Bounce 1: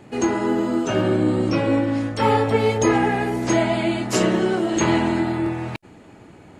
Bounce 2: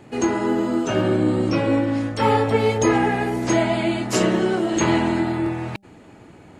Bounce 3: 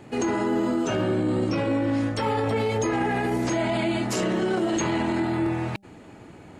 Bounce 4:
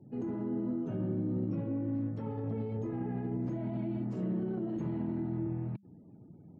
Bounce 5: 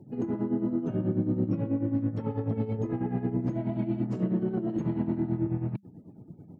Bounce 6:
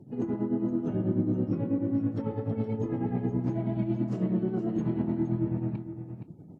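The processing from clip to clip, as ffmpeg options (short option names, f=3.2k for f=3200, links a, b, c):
-af "bandreject=f=198.7:t=h:w=4,bandreject=f=397.4:t=h:w=4,bandreject=f=596.1:t=h:w=4,bandreject=f=794.8:t=h:w=4"
-af "alimiter=limit=-17dB:level=0:latency=1:release=22"
-af "afftfilt=real='re*gte(hypot(re,im),0.00631)':imag='im*gte(hypot(re,im),0.00631)':win_size=1024:overlap=0.75,bandpass=f=160:t=q:w=1.7:csg=0,volume=-2.5dB"
-af "tremolo=f=9.2:d=0.68,volume=8.5dB"
-af "aecho=1:1:468:0.316" -ar 48000 -c:a libvorbis -b:a 32k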